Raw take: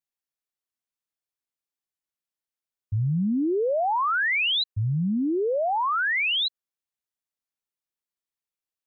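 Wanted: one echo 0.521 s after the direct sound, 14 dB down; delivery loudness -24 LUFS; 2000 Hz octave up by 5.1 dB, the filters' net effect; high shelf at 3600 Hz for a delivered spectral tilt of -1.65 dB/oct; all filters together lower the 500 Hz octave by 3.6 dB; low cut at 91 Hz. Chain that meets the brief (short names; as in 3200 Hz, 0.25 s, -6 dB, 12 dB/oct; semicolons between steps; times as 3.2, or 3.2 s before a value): HPF 91 Hz; bell 500 Hz -5 dB; bell 2000 Hz +5 dB; high shelf 3600 Hz +5.5 dB; echo 0.521 s -14 dB; gain -2.5 dB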